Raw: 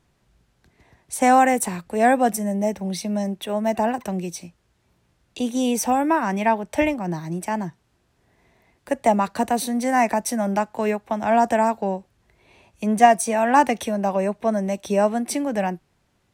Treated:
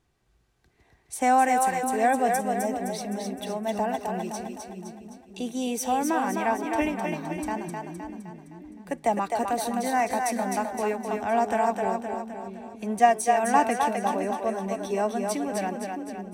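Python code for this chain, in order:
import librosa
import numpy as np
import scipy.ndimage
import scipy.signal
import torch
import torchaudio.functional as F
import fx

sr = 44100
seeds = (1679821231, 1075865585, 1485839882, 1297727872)

p1 = x + 0.3 * np.pad(x, (int(2.6 * sr / 1000.0), 0))[:len(x)]
p2 = p1 + fx.echo_split(p1, sr, split_hz=340.0, low_ms=611, high_ms=258, feedback_pct=52, wet_db=-4, dry=0)
y = p2 * 10.0 ** (-6.5 / 20.0)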